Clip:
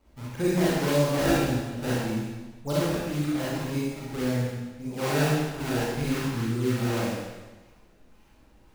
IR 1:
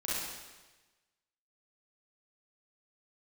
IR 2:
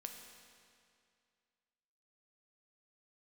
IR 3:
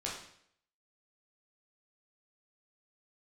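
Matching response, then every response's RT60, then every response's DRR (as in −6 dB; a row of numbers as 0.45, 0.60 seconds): 1; 1.2, 2.3, 0.65 seconds; −9.0, 3.0, −5.0 decibels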